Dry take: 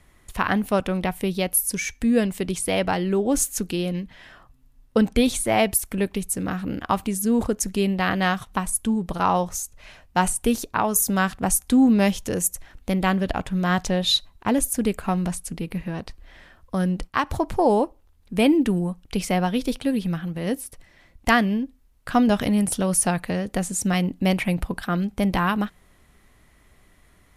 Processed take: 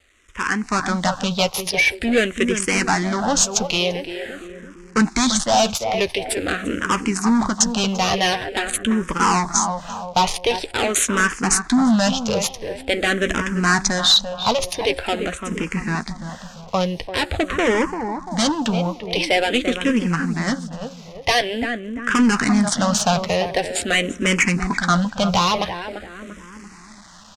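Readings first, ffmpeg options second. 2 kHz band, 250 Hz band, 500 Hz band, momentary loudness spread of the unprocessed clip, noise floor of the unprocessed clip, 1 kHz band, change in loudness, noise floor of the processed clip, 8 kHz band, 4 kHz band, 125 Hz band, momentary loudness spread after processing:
+8.0 dB, +1.0 dB, +3.0 dB, 9 LU, -57 dBFS, +4.0 dB, +3.5 dB, -42 dBFS, +4.0 dB, +9.5 dB, +0.5 dB, 10 LU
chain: -filter_complex "[0:a]adynamicsmooth=sensitivity=3.5:basefreq=1700,acrusher=bits=9:mix=0:aa=0.000001,tiltshelf=f=660:g=-8,asoftclip=type=tanh:threshold=0.15,asplit=2[s0][s1];[s1]adelay=13,volume=0.211[s2];[s0][s2]amix=inputs=2:normalize=0,asplit=2[s3][s4];[s4]adelay=342,lowpass=f=1200:p=1,volume=0.376,asplit=2[s5][s6];[s6]adelay=342,lowpass=f=1200:p=1,volume=0.48,asplit=2[s7][s8];[s8]adelay=342,lowpass=f=1200:p=1,volume=0.48,asplit=2[s9][s10];[s10]adelay=342,lowpass=f=1200:p=1,volume=0.48,asplit=2[s11][s12];[s12]adelay=342,lowpass=f=1200:p=1,volume=0.48[s13];[s3][s5][s7][s9][s11][s13]amix=inputs=6:normalize=0,dynaudnorm=f=260:g=5:m=4.47,asoftclip=type=hard:threshold=0.282,lowpass=f=6900:t=q:w=1.6,asplit=2[s14][s15];[s15]afreqshift=-0.46[s16];[s14][s16]amix=inputs=2:normalize=1"

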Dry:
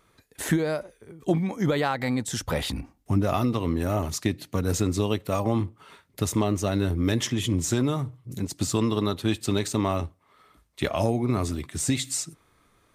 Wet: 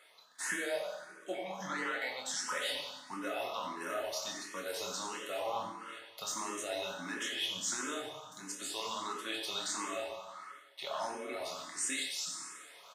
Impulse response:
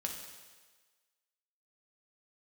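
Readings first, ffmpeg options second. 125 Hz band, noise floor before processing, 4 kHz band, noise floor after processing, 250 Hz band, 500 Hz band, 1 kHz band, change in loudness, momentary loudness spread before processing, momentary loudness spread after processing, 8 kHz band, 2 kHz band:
-33.5 dB, -64 dBFS, -3.5 dB, -57 dBFS, -21.0 dB, -11.5 dB, -7.0 dB, -11.0 dB, 8 LU, 10 LU, -6.0 dB, -3.0 dB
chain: -filter_complex "[0:a]highpass=880,highshelf=f=11000:g=-12,bandreject=f=2400:w=14,alimiter=level_in=1.06:limit=0.0631:level=0:latency=1:release=23,volume=0.944,areverse,acompressor=mode=upward:threshold=0.0112:ratio=2.5,areverse,asplit=2[s0][s1];[s1]adelay=27,volume=0.531[s2];[s0][s2]amix=inputs=2:normalize=0,asplit=2[s3][s4];[s4]adelay=90,highpass=300,lowpass=3400,asoftclip=type=hard:threshold=0.0398,volume=0.398[s5];[s3][s5]amix=inputs=2:normalize=0[s6];[1:a]atrim=start_sample=2205[s7];[s6][s7]afir=irnorm=-1:irlink=0,asplit=2[s8][s9];[s9]afreqshift=1.5[s10];[s8][s10]amix=inputs=2:normalize=1"

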